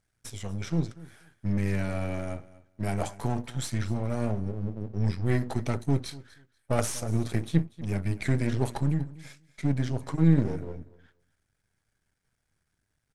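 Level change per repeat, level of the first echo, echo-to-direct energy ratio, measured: −15.5 dB, −19.5 dB, −19.5 dB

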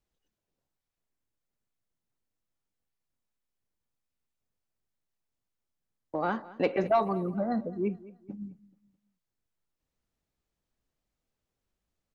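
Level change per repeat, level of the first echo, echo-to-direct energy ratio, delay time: −9.0 dB, −19.5 dB, −19.0 dB, 214 ms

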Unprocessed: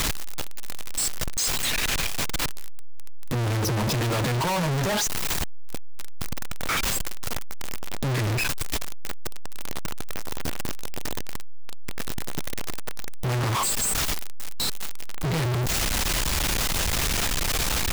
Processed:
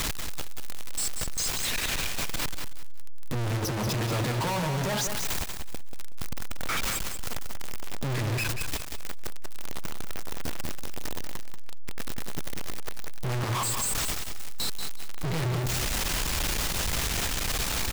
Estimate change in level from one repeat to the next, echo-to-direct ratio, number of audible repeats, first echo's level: −13.0 dB, −7.0 dB, 3, −7.0 dB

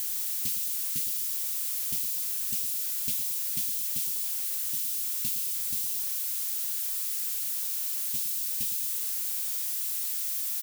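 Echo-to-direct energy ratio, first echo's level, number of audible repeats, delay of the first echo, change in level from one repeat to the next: −9.5 dB, −10.5 dB, 3, 112 ms, −7.5 dB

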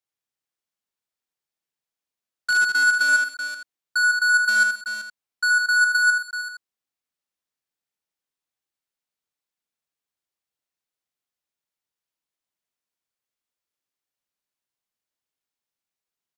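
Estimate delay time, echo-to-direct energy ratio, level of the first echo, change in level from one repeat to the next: 77 ms, −2.5 dB, −4.5 dB, repeats not evenly spaced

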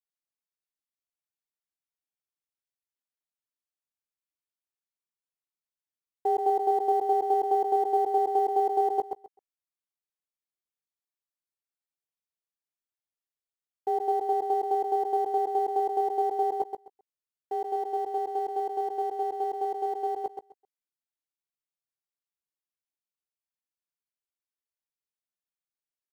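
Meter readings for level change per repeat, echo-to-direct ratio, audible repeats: −14.5 dB, −5.5 dB, 3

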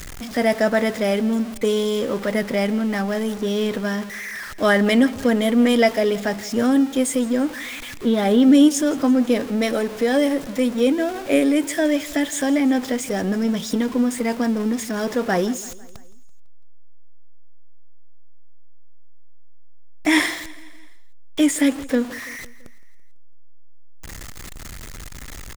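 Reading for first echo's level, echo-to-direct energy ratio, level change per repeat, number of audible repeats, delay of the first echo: −20.0 dB, −18.5 dB, −5.0 dB, 3, 167 ms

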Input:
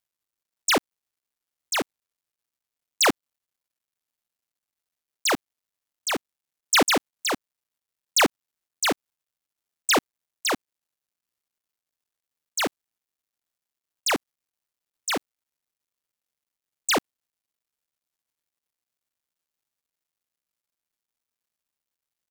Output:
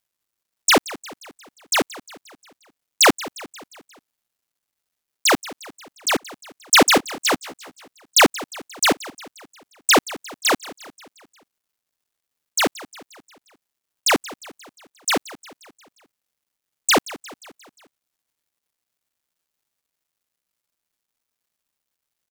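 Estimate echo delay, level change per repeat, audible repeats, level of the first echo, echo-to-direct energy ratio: 177 ms, −5.0 dB, 4, −18.5 dB, −17.0 dB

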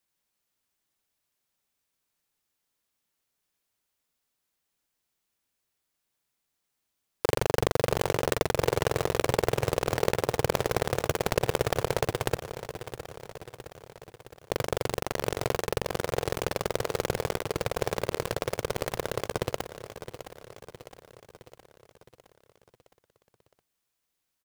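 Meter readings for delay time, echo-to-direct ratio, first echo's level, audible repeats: 664 ms, −10.5 dB, −12.0 dB, 5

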